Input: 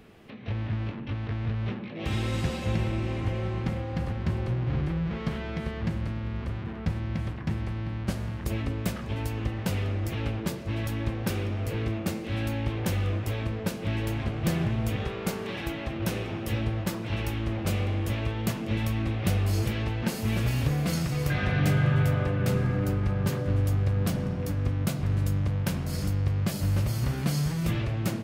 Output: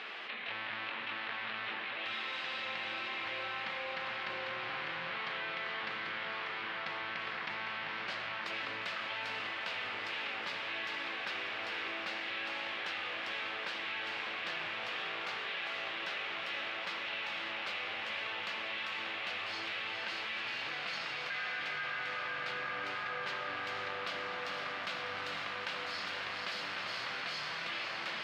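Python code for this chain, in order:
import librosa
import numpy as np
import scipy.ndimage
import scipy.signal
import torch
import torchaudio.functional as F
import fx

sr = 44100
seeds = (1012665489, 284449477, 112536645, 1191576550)

p1 = scipy.signal.sosfilt(scipy.signal.butter(2, 1300.0, 'highpass', fs=sr, output='sos'), x)
p2 = fx.high_shelf_res(p1, sr, hz=5300.0, db=-7.0, q=1.5)
p3 = fx.rider(p2, sr, range_db=3, speed_s=0.5)
p4 = fx.air_absorb(p3, sr, metres=160.0)
p5 = p4 + fx.echo_diffused(p4, sr, ms=481, feedback_pct=71, wet_db=-5.0, dry=0)
p6 = fx.env_flatten(p5, sr, amount_pct=70)
y = p6 * librosa.db_to_amplitude(-1.0)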